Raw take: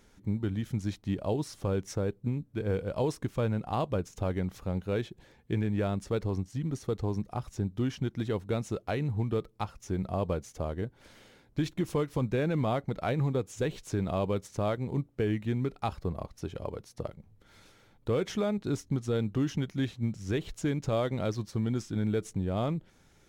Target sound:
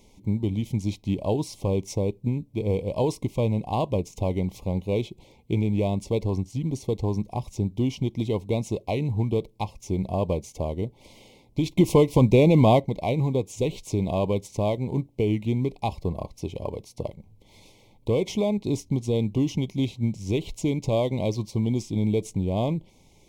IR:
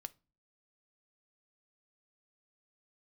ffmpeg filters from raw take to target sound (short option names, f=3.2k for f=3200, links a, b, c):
-filter_complex "[0:a]asettb=1/sr,asplit=3[a][b][c];[a]atrim=end=11.774[d];[b]atrim=start=11.77:end=12.8,asetpts=PTS-STARTPTS,afade=t=in:d=0.004:c=qsin,afade=t=out:st=1.026:d=0.004:c=qsin,acontrast=79[e];[c]atrim=start=12.796[f];[d][e]acrossfade=d=0.004:c1=hsin:c2=qsin[g];[g][f]acrossfade=d=0.004:c1=qsin:c2=hsin,asuperstop=centerf=1500:order=12:qfactor=1.5,asplit=2[h][i];[1:a]atrim=start_sample=2205,atrim=end_sample=3969[j];[i][j]afir=irnorm=-1:irlink=0,volume=-3.5dB[k];[h][k]amix=inputs=2:normalize=0,volume=2.5dB"